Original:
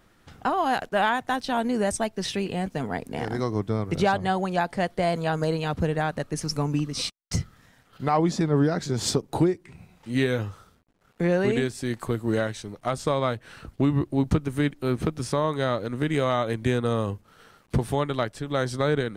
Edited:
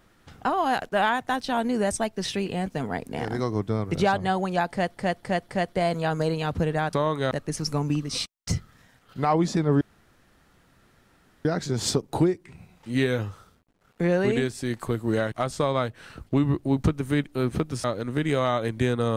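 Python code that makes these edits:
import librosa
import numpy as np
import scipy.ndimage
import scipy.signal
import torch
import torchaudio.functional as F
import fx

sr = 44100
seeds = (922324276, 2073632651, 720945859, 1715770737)

y = fx.edit(x, sr, fx.repeat(start_s=4.71, length_s=0.26, count=4),
    fx.insert_room_tone(at_s=8.65, length_s=1.64),
    fx.cut(start_s=12.52, length_s=0.27),
    fx.move(start_s=15.31, length_s=0.38, to_s=6.15), tone=tone)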